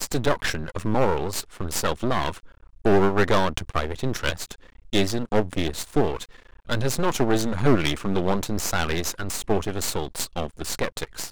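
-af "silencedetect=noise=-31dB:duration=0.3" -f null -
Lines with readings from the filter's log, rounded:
silence_start: 2.38
silence_end: 2.85 | silence_duration: 0.47
silence_start: 4.53
silence_end: 4.93 | silence_duration: 0.40
silence_start: 6.25
silence_end: 6.69 | silence_duration: 0.44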